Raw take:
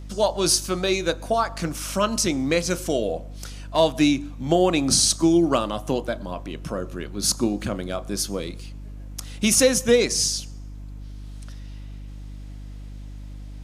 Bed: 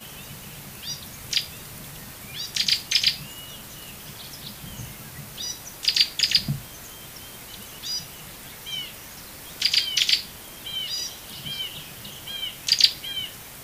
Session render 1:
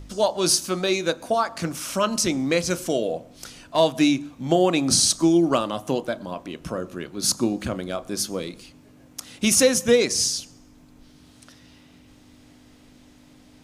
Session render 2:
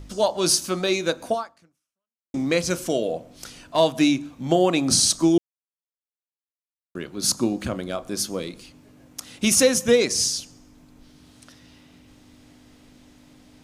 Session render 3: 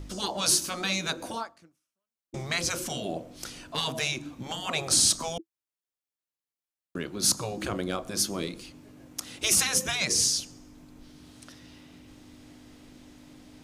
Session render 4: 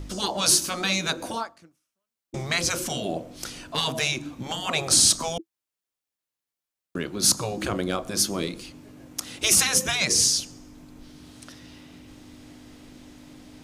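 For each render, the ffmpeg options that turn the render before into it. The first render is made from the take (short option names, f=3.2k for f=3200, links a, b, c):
-af "bandreject=f=50:t=h:w=4,bandreject=f=100:t=h:w=4,bandreject=f=150:t=h:w=4,bandreject=f=200:t=h:w=4"
-filter_complex "[0:a]asplit=4[a][b][c][d];[a]atrim=end=2.34,asetpts=PTS-STARTPTS,afade=t=out:st=1.32:d=1.02:c=exp[e];[b]atrim=start=2.34:end=5.38,asetpts=PTS-STARTPTS,afade=t=in:d=0.004:c=hsin,afade=t=out:st=3.036:d=0.004:c=hsin[f];[c]atrim=start=5.38:end=6.95,asetpts=PTS-STARTPTS,volume=0[g];[d]atrim=start=6.95,asetpts=PTS-STARTPTS,afade=t=in:d=0.004:c=hsin[h];[e][f][g][h]concat=n=4:v=0:a=1"
-af "equalizer=f=330:w=6.9:g=6,afftfilt=real='re*lt(hypot(re,im),0.251)':imag='im*lt(hypot(re,im),0.251)':win_size=1024:overlap=0.75"
-af "volume=4dB"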